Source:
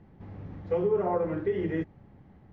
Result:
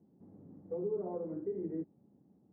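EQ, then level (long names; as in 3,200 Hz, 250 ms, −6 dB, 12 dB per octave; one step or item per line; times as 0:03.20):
four-pole ladder band-pass 310 Hz, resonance 25%
high-frequency loss of the air 490 metres
+3.5 dB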